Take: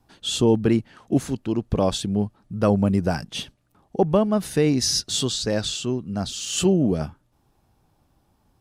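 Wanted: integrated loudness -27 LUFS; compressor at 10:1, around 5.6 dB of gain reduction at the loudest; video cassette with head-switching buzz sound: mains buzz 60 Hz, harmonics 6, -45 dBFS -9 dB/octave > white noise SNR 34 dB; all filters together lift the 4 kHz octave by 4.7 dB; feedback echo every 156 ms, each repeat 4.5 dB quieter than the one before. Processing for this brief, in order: peaking EQ 4 kHz +6 dB; compression 10:1, threshold -19 dBFS; feedback delay 156 ms, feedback 60%, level -4.5 dB; mains buzz 60 Hz, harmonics 6, -45 dBFS -9 dB/octave; white noise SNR 34 dB; trim -3.5 dB

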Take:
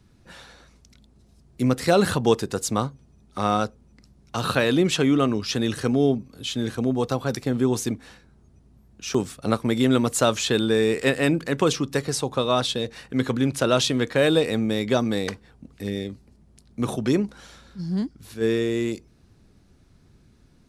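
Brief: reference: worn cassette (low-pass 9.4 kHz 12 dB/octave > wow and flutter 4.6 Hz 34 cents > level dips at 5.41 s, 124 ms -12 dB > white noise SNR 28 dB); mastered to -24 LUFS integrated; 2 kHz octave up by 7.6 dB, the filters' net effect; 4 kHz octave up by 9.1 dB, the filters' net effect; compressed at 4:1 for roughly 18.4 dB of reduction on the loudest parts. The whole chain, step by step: peaking EQ 2 kHz +7.5 dB; peaking EQ 4 kHz +8.5 dB; compression 4:1, threshold -35 dBFS; low-pass 9.4 kHz 12 dB/octave; wow and flutter 4.6 Hz 34 cents; level dips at 5.41 s, 124 ms -12 dB; white noise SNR 28 dB; trim +12.5 dB

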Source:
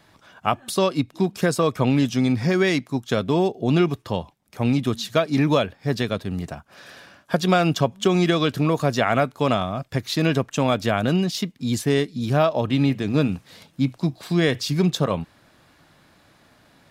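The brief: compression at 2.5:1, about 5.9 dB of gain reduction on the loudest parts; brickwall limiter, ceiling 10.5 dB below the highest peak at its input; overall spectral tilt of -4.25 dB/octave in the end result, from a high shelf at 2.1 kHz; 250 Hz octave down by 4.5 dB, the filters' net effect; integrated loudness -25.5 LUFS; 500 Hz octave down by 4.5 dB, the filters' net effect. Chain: peaking EQ 250 Hz -5 dB; peaking EQ 500 Hz -5 dB; treble shelf 2.1 kHz +8 dB; compression 2.5:1, threshold -24 dBFS; trim +4.5 dB; peak limiter -14 dBFS

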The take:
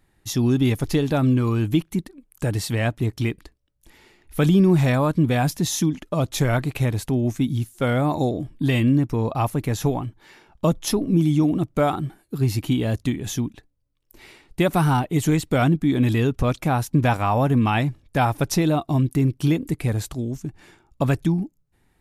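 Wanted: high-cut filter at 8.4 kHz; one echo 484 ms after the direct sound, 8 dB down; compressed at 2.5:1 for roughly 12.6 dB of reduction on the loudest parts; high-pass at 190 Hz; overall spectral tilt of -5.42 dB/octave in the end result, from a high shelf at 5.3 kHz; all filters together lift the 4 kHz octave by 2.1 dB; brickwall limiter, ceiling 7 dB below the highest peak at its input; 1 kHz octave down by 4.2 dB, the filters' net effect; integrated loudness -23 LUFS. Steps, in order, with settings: high-pass 190 Hz; low-pass 8.4 kHz; peaking EQ 1 kHz -6 dB; peaking EQ 4 kHz +6 dB; treble shelf 5.3 kHz -7 dB; compression 2.5:1, threshold -36 dBFS; peak limiter -26 dBFS; delay 484 ms -8 dB; trim +14 dB

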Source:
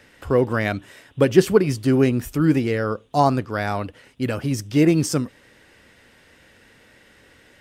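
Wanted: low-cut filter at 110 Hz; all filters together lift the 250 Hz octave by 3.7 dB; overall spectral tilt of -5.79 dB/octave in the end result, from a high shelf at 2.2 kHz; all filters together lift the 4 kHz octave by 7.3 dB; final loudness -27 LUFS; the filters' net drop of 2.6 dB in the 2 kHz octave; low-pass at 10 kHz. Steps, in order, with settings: high-pass 110 Hz; low-pass 10 kHz; peaking EQ 250 Hz +5 dB; peaking EQ 2 kHz -8 dB; treble shelf 2.2 kHz +5 dB; peaking EQ 4 kHz +7 dB; trim -8.5 dB

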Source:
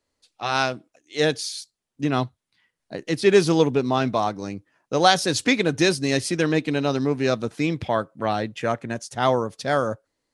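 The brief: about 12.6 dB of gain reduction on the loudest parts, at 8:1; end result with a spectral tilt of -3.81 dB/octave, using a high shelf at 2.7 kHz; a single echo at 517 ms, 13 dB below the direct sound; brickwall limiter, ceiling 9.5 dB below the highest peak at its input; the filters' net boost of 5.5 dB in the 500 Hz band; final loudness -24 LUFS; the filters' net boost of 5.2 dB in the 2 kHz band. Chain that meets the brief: peaking EQ 500 Hz +6.5 dB; peaking EQ 2 kHz +4 dB; treble shelf 2.7 kHz +5.5 dB; compression 8:1, threshold -20 dBFS; peak limiter -18.5 dBFS; delay 517 ms -13 dB; trim +6 dB

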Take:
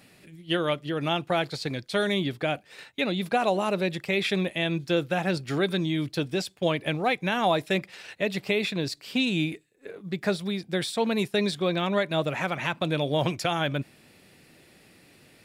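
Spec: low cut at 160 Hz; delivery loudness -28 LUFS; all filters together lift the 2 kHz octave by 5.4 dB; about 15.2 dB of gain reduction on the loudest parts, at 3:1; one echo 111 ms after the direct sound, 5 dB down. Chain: high-pass 160 Hz; peaking EQ 2 kHz +7 dB; compression 3:1, threshold -40 dBFS; delay 111 ms -5 dB; trim +10 dB

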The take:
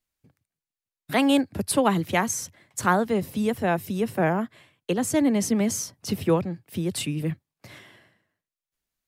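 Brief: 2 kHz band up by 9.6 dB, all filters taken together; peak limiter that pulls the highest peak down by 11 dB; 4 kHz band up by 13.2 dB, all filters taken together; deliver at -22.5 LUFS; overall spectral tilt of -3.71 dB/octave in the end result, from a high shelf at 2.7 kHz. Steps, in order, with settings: peaking EQ 2 kHz +6.5 dB; treble shelf 2.7 kHz +9 dB; peaking EQ 4 kHz +7.5 dB; peak limiter -10.5 dBFS

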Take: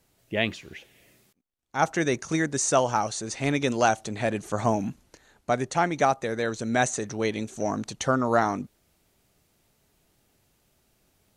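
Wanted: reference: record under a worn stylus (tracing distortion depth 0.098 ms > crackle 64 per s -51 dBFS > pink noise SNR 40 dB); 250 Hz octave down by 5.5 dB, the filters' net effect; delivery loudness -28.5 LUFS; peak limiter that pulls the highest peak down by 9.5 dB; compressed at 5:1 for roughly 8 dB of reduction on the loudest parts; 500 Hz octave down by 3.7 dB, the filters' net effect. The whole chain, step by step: peaking EQ 250 Hz -6 dB; peaking EQ 500 Hz -3.5 dB; compression 5:1, threshold -27 dBFS; peak limiter -25 dBFS; tracing distortion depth 0.098 ms; crackle 64 per s -51 dBFS; pink noise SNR 40 dB; trim +8 dB

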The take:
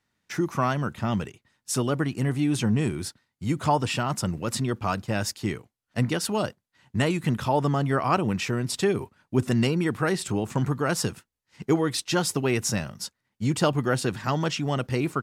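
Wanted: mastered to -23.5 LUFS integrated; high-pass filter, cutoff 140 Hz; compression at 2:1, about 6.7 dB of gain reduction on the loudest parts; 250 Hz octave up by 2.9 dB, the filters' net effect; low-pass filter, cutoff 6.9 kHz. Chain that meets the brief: high-pass 140 Hz; low-pass 6.9 kHz; peaking EQ 250 Hz +4.5 dB; compression 2:1, threshold -27 dBFS; trim +6.5 dB

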